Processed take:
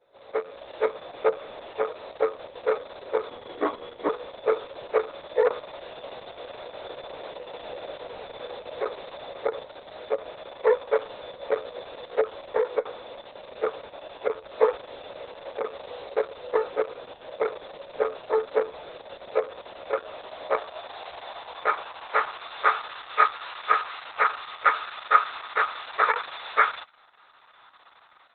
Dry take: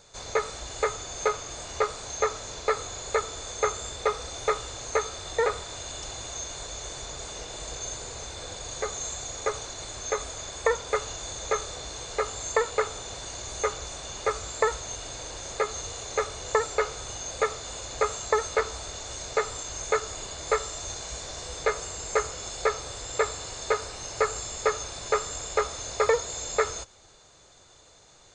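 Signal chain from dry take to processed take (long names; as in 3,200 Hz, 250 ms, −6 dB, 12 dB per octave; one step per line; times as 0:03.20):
every partial snapped to a pitch grid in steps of 2 semitones
low-pass filter 5,200 Hz 24 dB per octave
dynamic equaliser 3,200 Hz, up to +5 dB, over −44 dBFS, Q 1.2
automatic gain control gain up to 10 dB
0:03.29–0:04.09: frequency shifter −140 Hz
band-pass filter sweep 520 Hz → 1,200 Hz, 0:19.39–0:23.04
Opus 6 kbit/s 48,000 Hz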